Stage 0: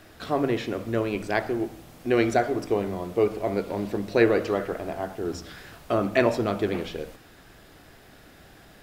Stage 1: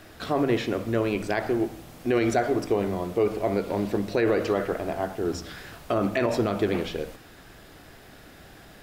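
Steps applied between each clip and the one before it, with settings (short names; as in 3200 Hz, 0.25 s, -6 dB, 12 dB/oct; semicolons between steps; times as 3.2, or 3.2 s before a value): limiter -16 dBFS, peak gain reduction 10 dB; gain +2.5 dB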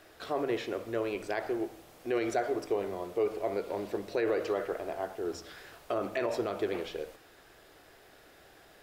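resonant low shelf 300 Hz -7.5 dB, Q 1.5; gain -7.5 dB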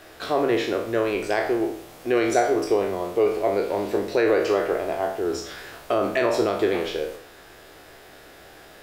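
spectral trails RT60 0.54 s; gain +8.5 dB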